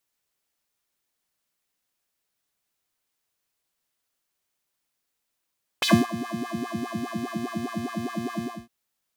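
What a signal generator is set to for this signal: synth patch with filter wobble A#3, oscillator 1 square, oscillator 2 square, interval +7 st, oscillator 2 level -6.5 dB, filter highpass, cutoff 170 Hz, Q 3.9, filter envelope 3.5 oct, filter decay 0.11 s, filter sustain 30%, attack 6.6 ms, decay 0.24 s, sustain -18 dB, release 0.26 s, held 2.60 s, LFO 4.9 Hz, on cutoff 2 oct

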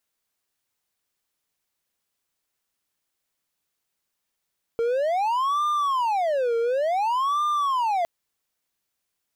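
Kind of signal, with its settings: siren wail 461–1200 Hz 0.56 per s triangle -18.5 dBFS 3.26 s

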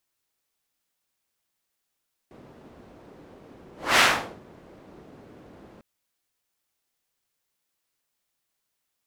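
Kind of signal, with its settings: whoosh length 3.50 s, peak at 1.68 s, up 0.26 s, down 0.45 s, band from 330 Hz, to 2 kHz, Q 0.82, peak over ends 32 dB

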